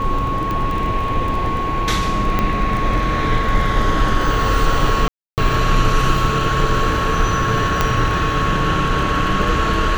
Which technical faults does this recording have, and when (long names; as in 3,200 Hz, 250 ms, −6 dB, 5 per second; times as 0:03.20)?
surface crackle 13 per second −23 dBFS
whistle 1,100 Hz −21 dBFS
0:00.51: click −11 dBFS
0:02.39: click −5 dBFS
0:05.08–0:05.38: drop-out 298 ms
0:07.81: click −1 dBFS